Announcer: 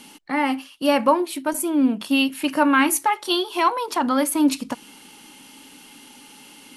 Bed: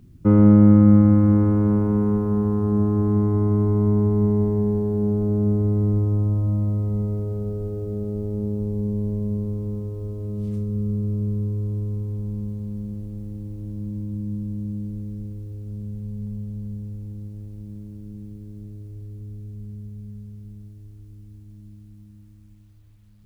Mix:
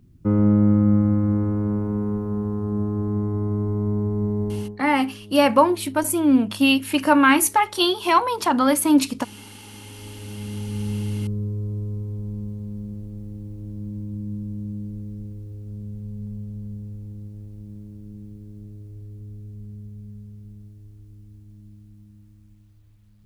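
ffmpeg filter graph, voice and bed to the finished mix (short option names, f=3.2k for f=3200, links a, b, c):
-filter_complex "[0:a]adelay=4500,volume=2dB[a];[1:a]volume=14.5dB,afade=t=out:st=4.53:d=0.24:silence=0.149624,afade=t=in:st=9.65:d=1.25:silence=0.112202[b];[a][b]amix=inputs=2:normalize=0"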